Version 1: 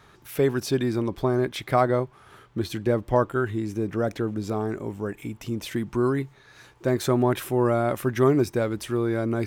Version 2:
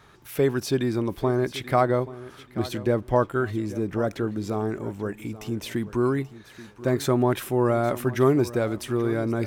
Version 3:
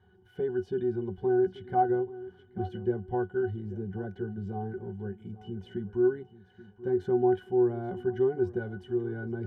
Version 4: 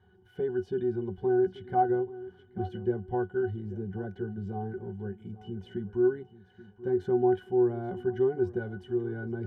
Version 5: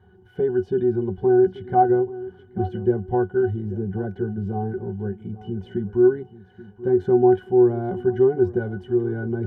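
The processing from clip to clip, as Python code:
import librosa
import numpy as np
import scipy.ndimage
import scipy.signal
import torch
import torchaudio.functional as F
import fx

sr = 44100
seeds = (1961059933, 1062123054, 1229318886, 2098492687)

y1 = fx.echo_feedback(x, sr, ms=833, feedback_pct=24, wet_db=-16.5)
y2 = fx.octave_resonator(y1, sr, note='F#', decay_s=0.12)
y2 = F.gain(torch.from_numpy(y2), 2.0).numpy()
y3 = y2
y4 = fx.high_shelf(y3, sr, hz=2000.0, db=-9.0)
y4 = F.gain(torch.from_numpy(y4), 9.0).numpy()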